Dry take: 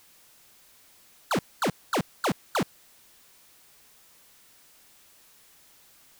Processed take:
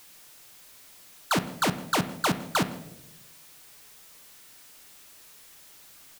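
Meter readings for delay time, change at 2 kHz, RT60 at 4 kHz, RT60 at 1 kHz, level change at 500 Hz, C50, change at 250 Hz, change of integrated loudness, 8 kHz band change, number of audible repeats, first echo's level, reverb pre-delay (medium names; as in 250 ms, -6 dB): 162 ms, +4.0 dB, 0.55 s, 0.70 s, -1.0 dB, 13.0 dB, +2.0 dB, +2.5 dB, +5.5 dB, 1, -23.5 dB, 7 ms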